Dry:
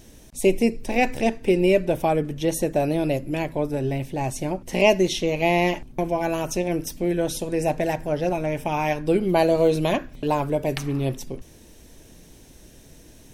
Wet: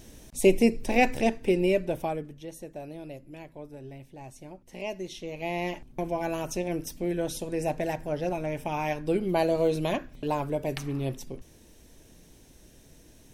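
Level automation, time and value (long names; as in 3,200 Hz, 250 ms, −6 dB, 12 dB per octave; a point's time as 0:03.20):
0:00.98 −1 dB
0:02.03 −8 dB
0:02.47 −18 dB
0:04.87 −18 dB
0:06.08 −6 dB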